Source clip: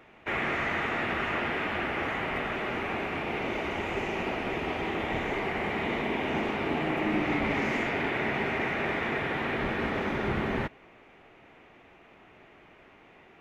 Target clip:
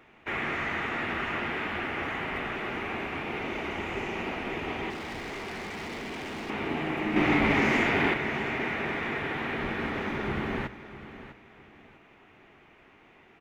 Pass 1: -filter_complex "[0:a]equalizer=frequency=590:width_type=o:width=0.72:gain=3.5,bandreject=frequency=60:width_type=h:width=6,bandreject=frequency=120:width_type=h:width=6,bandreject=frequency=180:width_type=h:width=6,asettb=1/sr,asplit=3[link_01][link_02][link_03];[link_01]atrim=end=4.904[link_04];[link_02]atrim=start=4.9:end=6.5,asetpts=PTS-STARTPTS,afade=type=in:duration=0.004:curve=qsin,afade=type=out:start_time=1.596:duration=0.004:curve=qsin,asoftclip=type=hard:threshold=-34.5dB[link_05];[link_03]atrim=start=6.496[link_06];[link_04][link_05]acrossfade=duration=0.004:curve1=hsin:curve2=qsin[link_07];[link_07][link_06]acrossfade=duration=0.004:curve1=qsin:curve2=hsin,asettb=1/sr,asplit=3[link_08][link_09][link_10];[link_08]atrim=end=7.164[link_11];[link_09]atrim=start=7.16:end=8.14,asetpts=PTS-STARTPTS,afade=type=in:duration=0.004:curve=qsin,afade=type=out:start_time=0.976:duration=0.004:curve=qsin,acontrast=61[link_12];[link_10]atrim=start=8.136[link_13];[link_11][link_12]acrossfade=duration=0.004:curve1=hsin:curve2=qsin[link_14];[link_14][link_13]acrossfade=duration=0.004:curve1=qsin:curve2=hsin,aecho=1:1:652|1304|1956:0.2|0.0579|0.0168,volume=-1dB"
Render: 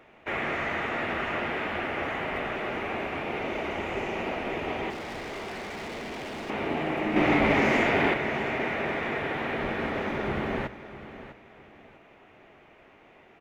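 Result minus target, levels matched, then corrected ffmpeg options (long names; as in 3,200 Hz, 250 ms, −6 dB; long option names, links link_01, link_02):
500 Hz band +2.5 dB
-filter_complex "[0:a]equalizer=frequency=590:width_type=o:width=0.72:gain=-4,bandreject=frequency=60:width_type=h:width=6,bandreject=frequency=120:width_type=h:width=6,bandreject=frequency=180:width_type=h:width=6,asettb=1/sr,asplit=3[link_01][link_02][link_03];[link_01]atrim=end=4.904[link_04];[link_02]atrim=start=4.9:end=6.5,asetpts=PTS-STARTPTS,afade=type=in:duration=0.004:curve=qsin,afade=type=out:start_time=1.596:duration=0.004:curve=qsin,asoftclip=type=hard:threshold=-34.5dB[link_05];[link_03]atrim=start=6.496[link_06];[link_04][link_05]acrossfade=duration=0.004:curve1=hsin:curve2=qsin[link_07];[link_07][link_06]acrossfade=duration=0.004:curve1=qsin:curve2=hsin,asettb=1/sr,asplit=3[link_08][link_09][link_10];[link_08]atrim=end=7.164[link_11];[link_09]atrim=start=7.16:end=8.14,asetpts=PTS-STARTPTS,afade=type=in:duration=0.004:curve=qsin,afade=type=out:start_time=0.976:duration=0.004:curve=qsin,acontrast=61[link_12];[link_10]atrim=start=8.136[link_13];[link_11][link_12]acrossfade=duration=0.004:curve1=hsin:curve2=qsin[link_14];[link_14][link_13]acrossfade=duration=0.004:curve1=qsin:curve2=hsin,aecho=1:1:652|1304|1956:0.2|0.0579|0.0168,volume=-1dB"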